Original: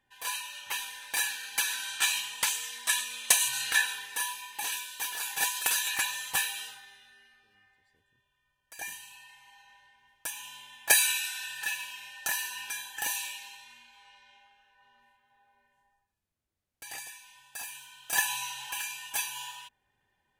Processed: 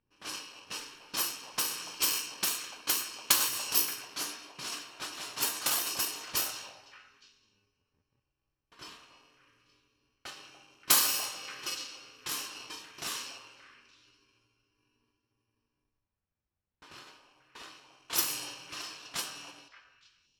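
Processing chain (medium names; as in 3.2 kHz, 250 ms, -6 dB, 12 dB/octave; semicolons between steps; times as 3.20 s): bit-reversed sample order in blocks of 64 samples; repeats whose band climbs or falls 290 ms, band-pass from 700 Hz, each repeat 1.4 oct, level -8 dB; level-controlled noise filter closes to 2.2 kHz, open at -25 dBFS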